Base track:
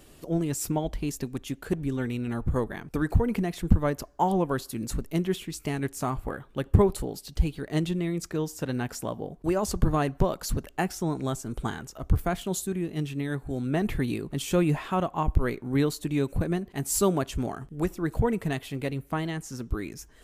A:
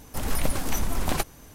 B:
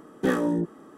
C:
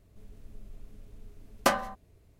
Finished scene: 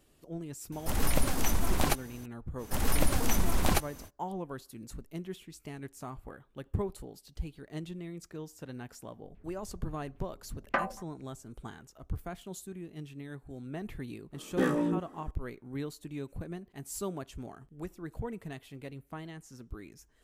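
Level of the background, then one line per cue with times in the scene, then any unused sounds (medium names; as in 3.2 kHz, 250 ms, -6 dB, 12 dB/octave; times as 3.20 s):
base track -13 dB
0.72 s: add A -1.5 dB
2.57 s: add A -1 dB, fades 0.05 s
9.08 s: add C -8 dB + LFO low-pass saw down 3.7 Hz 320–2900 Hz
14.34 s: add B -4.5 dB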